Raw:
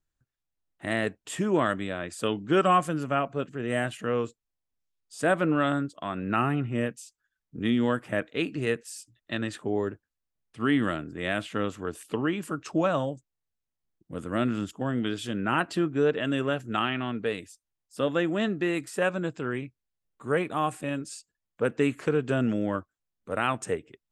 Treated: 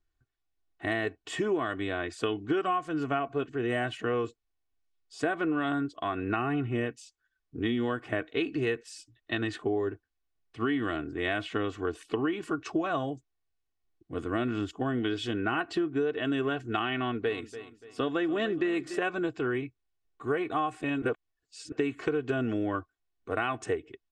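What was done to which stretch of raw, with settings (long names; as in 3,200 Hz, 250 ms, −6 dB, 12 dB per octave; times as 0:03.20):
0:16.97–0:18.99: repeating echo 289 ms, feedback 36%, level −16 dB
0:21.02–0:21.72: reverse
whole clip: low-pass filter 4,800 Hz 12 dB per octave; comb filter 2.7 ms, depth 68%; downward compressor 10 to 1, threshold −26 dBFS; level +1 dB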